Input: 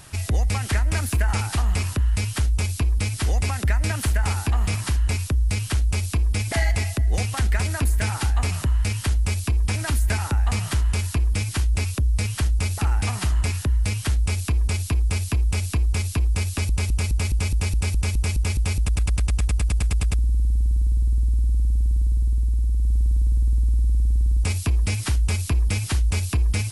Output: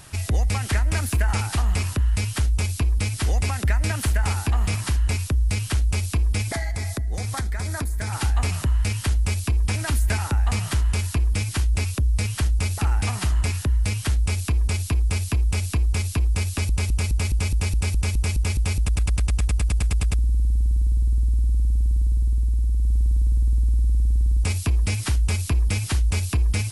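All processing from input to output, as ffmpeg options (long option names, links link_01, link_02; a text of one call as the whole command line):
ffmpeg -i in.wav -filter_complex "[0:a]asettb=1/sr,asplit=3[link_01][link_02][link_03];[link_01]atrim=end=6.514[link_04];[link_02]atrim=start=6.51:end=8.13,asetpts=PTS-STARTPTS,afade=type=in:duration=0.004:curve=qsin,afade=type=out:start_time=1.616:duration=0.004:curve=qsin,equalizer=frequency=2800:width_type=o:width=0.21:gain=-15,acompressor=threshold=-23dB:ratio=5:attack=3.2:release=140:knee=1:detection=peak[link_05];[link_03]atrim=start=8.126[link_06];[link_04][link_05]acrossfade=duration=0.004:curve1=hsin:curve2=qsin[link_07];[link_07][link_06]acrossfade=duration=0.004:curve1=qsin:curve2=hsin" out.wav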